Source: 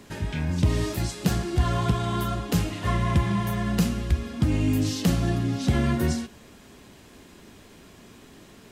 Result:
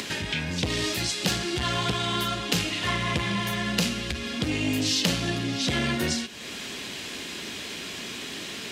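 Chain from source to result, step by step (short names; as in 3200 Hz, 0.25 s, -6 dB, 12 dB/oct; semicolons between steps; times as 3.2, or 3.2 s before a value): weighting filter D; upward compressor, threshold -25 dBFS; core saturation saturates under 770 Hz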